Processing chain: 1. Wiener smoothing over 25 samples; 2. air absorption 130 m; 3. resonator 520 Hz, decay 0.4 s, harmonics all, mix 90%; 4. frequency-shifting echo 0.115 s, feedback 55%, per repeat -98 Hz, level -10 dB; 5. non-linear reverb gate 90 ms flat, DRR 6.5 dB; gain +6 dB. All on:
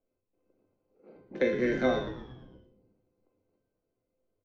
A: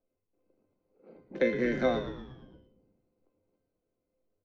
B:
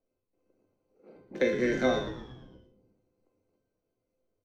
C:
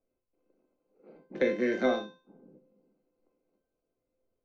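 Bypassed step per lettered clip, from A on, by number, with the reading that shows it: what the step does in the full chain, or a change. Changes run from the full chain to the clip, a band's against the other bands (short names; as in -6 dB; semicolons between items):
5, echo-to-direct -4.0 dB to -8.5 dB; 2, 4 kHz band +3.0 dB; 4, echo-to-direct -4.0 dB to -6.5 dB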